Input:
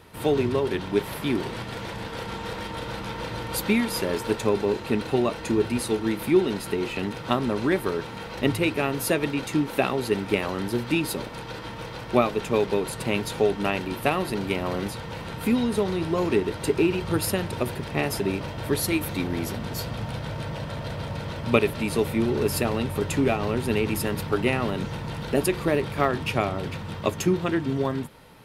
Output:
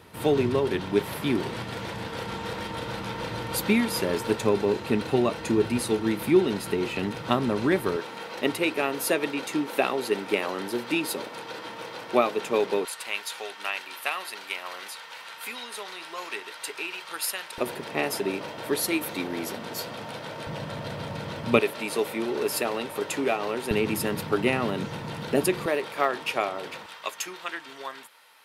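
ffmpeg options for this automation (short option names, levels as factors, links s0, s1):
-af "asetnsamples=n=441:p=0,asendcmd='7.96 highpass f 310;12.85 highpass f 1200;17.58 highpass f 290;20.47 highpass f 140;21.6 highpass f 380;23.71 highpass f 150;25.66 highpass f 460;26.86 highpass f 1100',highpass=78"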